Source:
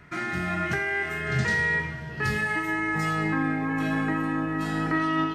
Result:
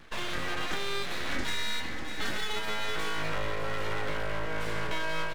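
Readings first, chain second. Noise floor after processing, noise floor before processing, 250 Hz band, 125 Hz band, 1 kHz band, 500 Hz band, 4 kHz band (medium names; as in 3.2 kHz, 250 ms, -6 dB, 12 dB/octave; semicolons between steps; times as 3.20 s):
-32 dBFS, -37 dBFS, -14.5 dB, -11.0 dB, -6.0 dB, -2.5 dB, +6.5 dB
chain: full-wave rectifier; delay 598 ms -13 dB; compression 3:1, threshold -26 dBFS, peak gain reduction 5.5 dB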